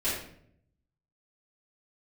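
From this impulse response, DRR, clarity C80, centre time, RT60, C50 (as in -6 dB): -12.0 dB, 5.5 dB, 51 ms, 0.65 s, 1.5 dB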